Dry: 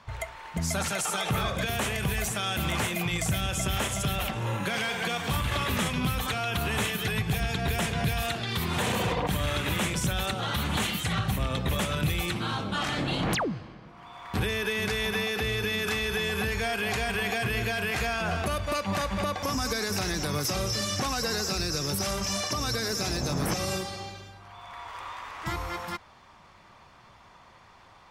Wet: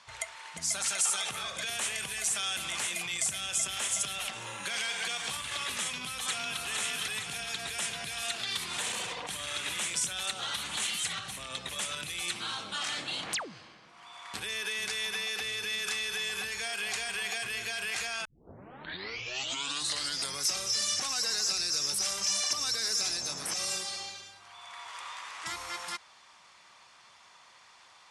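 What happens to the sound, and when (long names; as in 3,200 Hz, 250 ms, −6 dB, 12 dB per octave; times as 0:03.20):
0:05.82–0:06.60: delay throw 460 ms, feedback 65%, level −3.5 dB
0:18.25: tape start 2.19 s
whole clip: downward compressor, threshold −29 dBFS; Butterworth low-pass 10,000 Hz 36 dB per octave; spectral tilt +4.5 dB per octave; level −5 dB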